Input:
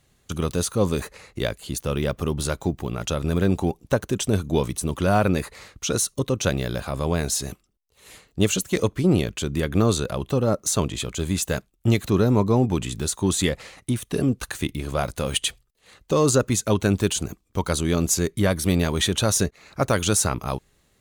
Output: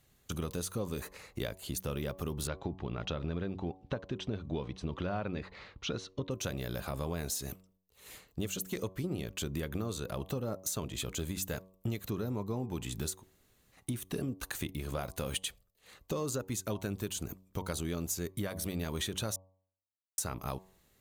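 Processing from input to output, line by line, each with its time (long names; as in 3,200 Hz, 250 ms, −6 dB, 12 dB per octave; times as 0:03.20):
0:02.47–0:06.31: low-pass filter 4,200 Hz 24 dB per octave
0:13.16–0:13.79: fill with room tone, crossfade 0.16 s
0:19.36–0:20.18: silence
whole clip: parametric band 14,000 Hz +14 dB 0.22 octaves; downward compressor, threshold −27 dBFS; hum removal 94.05 Hz, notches 12; level −5.5 dB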